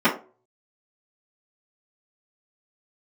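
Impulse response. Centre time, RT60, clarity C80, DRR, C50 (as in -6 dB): 20 ms, 0.40 s, 16.0 dB, -12.5 dB, 10.0 dB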